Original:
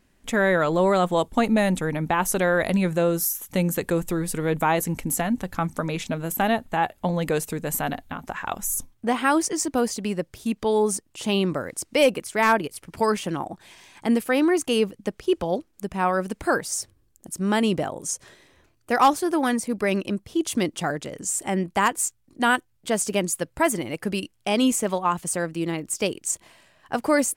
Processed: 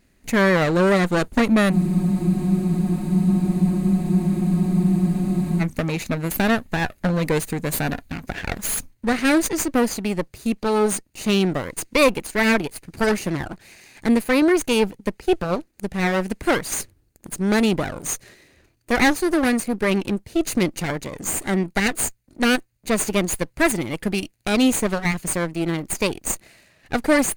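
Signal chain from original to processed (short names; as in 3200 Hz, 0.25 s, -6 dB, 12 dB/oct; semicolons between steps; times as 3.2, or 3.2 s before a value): minimum comb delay 0.45 ms; spectral freeze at 1.73, 3.88 s; gain +3.5 dB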